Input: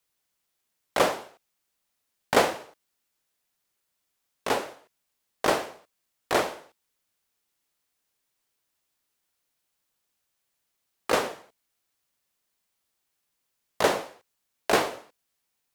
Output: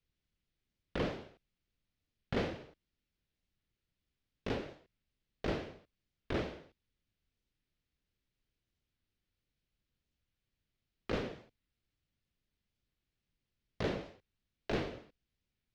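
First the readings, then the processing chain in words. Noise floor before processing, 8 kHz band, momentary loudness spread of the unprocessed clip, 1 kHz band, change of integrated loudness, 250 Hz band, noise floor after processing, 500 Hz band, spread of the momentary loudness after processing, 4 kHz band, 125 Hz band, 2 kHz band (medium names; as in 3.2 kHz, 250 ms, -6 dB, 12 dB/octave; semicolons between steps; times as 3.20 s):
-79 dBFS, -26.0 dB, 17 LU, -18.5 dB, -13.0 dB, -5.5 dB, under -85 dBFS, -12.5 dB, 16 LU, -14.5 dB, +1.5 dB, -14.5 dB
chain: amplifier tone stack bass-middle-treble 10-0-1; in parallel at +3 dB: compression, threshold -53 dBFS, peak gain reduction 13.5 dB; on the sum: saturation -38 dBFS, distortion -12 dB; distance through air 250 m; warped record 45 rpm, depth 160 cents; trim +13 dB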